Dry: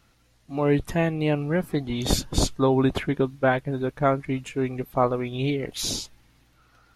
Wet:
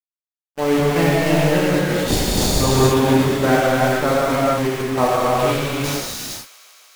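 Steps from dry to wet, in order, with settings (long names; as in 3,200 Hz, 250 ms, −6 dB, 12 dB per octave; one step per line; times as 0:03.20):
centre clipping without the shift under −24 dBFS
downward expander −29 dBFS
delay with a high-pass on its return 151 ms, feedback 85%, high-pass 1,700 Hz, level −21 dB
reverb whose tail is shaped and stops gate 500 ms flat, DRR −7.5 dB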